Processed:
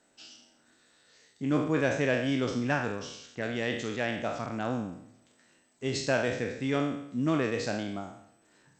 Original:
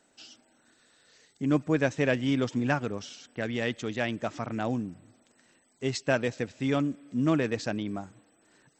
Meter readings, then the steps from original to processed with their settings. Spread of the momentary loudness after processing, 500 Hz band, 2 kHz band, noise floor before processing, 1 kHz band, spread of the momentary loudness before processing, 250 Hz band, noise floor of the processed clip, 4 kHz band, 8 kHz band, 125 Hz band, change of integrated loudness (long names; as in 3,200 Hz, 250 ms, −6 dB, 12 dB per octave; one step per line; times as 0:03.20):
13 LU, 0.0 dB, +0.5 dB, −67 dBFS, 0.0 dB, 10 LU, −2.0 dB, −66 dBFS, +0.5 dB, +1.0 dB, −2.0 dB, −1.0 dB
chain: peak hold with a decay on every bin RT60 0.72 s
harmonic generator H 5 −30 dB, 7 −38 dB, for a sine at −9 dBFS
level −3.5 dB